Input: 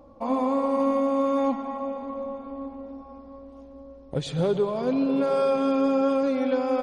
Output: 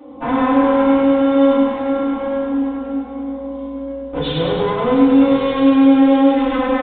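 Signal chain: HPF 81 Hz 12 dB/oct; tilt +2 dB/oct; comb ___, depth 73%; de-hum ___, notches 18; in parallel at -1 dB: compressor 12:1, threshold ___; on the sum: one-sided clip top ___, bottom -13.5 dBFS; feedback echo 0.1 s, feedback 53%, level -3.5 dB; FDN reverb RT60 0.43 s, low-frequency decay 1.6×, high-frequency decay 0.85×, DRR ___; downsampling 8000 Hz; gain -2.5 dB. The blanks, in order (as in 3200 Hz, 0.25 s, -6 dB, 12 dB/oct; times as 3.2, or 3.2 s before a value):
4 ms, 105.3 Hz, -30 dBFS, -33.5 dBFS, -8.5 dB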